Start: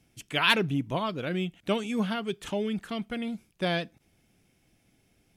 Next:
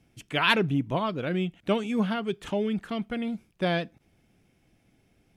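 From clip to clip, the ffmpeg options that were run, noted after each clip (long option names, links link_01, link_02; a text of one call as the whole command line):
ffmpeg -i in.wav -af "highshelf=frequency=3500:gain=-8.5,volume=2.5dB" out.wav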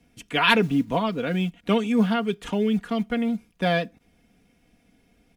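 ffmpeg -i in.wav -filter_complex "[0:a]acrossover=split=190|1000[link_01][link_02][link_03];[link_01]acrusher=bits=6:mode=log:mix=0:aa=0.000001[link_04];[link_04][link_02][link_03]amix=inputs=3:normalize=0,aecho=1:1:4.2:0.58,volume=2.5dB" out.wav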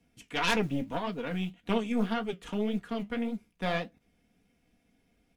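ffmpeg -i in.wav -af "aeval=exprs='0.631*(cos(1*acos(clip(val(0)/0.631,-1,1)))-cos(1*PI/2))+0.224*(cos(4*acos(clip(val(0)/0.631,-1,1)))-cos(4*PI/2))+0.0794*(cos(5*acos(clip(val(0)/0.631,-1,1)))-cos(5*PI/2))':channel_layout=same,flanger=delay=9.8:depth=7.6:regen=-53:speed=1.8:shape=triangular,volume=-8.5dB" out.wav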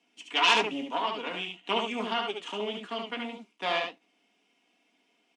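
ffmpeg -i in.wav -af "highpass=frequency=310:width=0.5412,highpass=frequency=310:width=1.3066,equalizer=frequency=500:width_type=q:width=4:gain=-8,equalizer=frequency=1000:width_type=q:width=4:gain=6,equalizer=frequency=1600:width_type=q:width=4:gain=-4,equalizer=frequency=2900:width_type=q:width=4:gain=9,lowpass=frequency=8400:width=0.5412,lowpass=frequency=8400:width=1.3066,aecho=1:1:72:0.596,volume=2.5dB" out.wav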